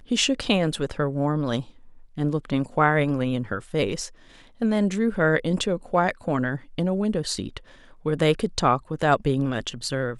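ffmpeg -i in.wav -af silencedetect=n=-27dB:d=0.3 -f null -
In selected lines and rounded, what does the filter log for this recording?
silence_start: 1.61
silence_end: 2.18 | silence_duration: 0.58
silence_start: 4.06
silence_end: 4.62 | silence_duration: 0.56
silence_start: 7.57
silence_end: 8.06 | silence_duration: 0.49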